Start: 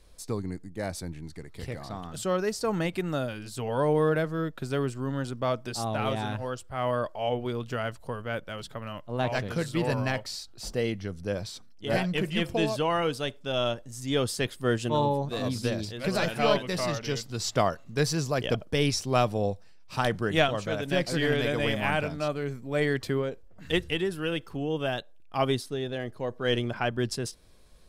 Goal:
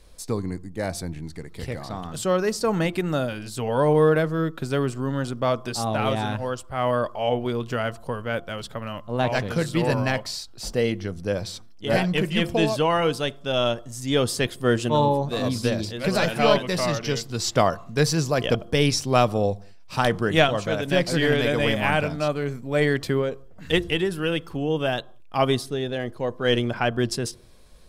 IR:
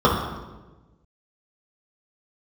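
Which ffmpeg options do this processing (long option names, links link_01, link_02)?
-filter_complex "[0:a]bandreject=frequency=345.2:width_type=h:width=4,bandreject=frequency=690.4:width_type=h:width=4,bandreject=frequency=1035.6:width_type=h:width=4,asplit=2[link_01][link_02];[1:a]atrim=start_sample=2205,afade=type=out:start_time=0.25:duration=0.01,atrim=end_sample=11466,asetrate=42336,aresample=44100[link_03];[link_02][link_03]afir=irnorm=-1:irlink=0,volume=-44.5dB[link_04];[link_01][link_04]amix=inputs=2:normalize=0,volume=5dB"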